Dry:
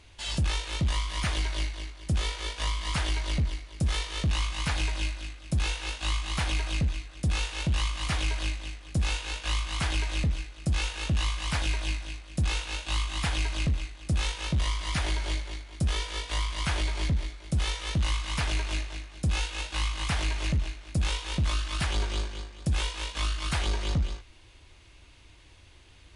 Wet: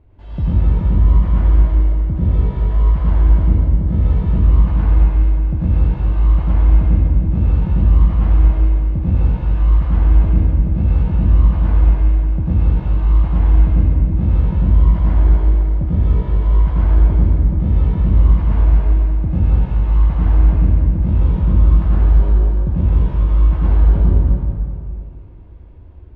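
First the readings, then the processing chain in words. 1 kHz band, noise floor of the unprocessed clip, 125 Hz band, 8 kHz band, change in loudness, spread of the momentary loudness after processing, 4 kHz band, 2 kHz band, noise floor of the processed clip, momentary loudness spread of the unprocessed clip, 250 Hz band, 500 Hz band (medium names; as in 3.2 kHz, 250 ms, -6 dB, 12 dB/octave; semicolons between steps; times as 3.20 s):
+4.0 dB, -53 dBFS, +16.5 dB, under -30 dB, +15.0 dB, 4 LU, under -15 dB, -7.0 dB, -32 dBFS, 4 LU, +14.5 dB, +10.5 dB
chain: Bessel low-pass 530 Hz, order 2; bass shelf 330 Hz +3 dB; plate-style reverb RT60 2.5 s, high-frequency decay 0.65×, pre-delay 80 ms, DRR -8.5 dB; trim +3 dB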